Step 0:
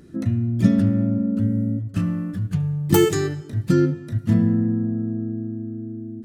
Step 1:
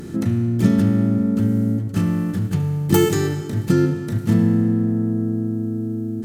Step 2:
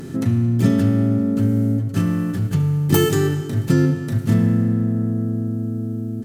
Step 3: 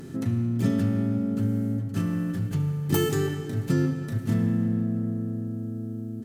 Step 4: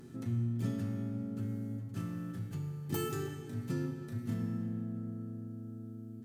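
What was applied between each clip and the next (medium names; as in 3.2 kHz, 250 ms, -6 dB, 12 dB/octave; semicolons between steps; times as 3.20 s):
spectral levelling over time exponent 0.6; trim -1 dB
comb 7.5 ms, depth 51%
feedback echo behind a low-pass 167 ms, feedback 67%, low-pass 3.3 kHz, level -14 dB; trim -7.5 dB
feedback comb 120 Hz, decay 0.88 s, harmonics all, mix 80%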